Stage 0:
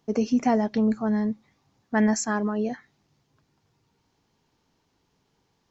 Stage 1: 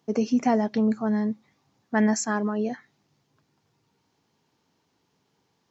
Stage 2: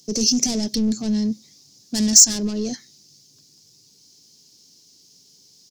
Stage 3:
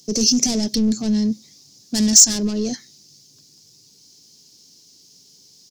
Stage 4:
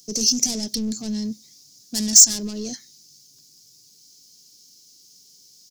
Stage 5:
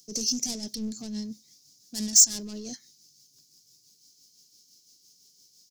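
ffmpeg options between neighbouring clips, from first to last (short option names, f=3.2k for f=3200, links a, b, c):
-af "highpass=110"
-filter_complex "[0:a]asplit=2[a][b];[b]highpass=f=720:p=1,volume=25dB,asoftclip=type=tanh:threshold=-9dB[c];[a][c]amix=inputs=2:normalize=0,lowpass=f=3.1k:p=1,volume=-6dB,firequalizer=gain_entry='entry(100,0);entry(840,-26);entry(1300,-27);entry(5000,13)':delay=0.05:min_phase=1,volume=2dB"
-af "asoftclip=type=tanh:threshold=-5dB,volume=2.5dB"
-af "crystalizer=i=2:c=0,volume=-8dB"
-af "tremolo=f=5.9:d=0.44,volume=-5.5dB"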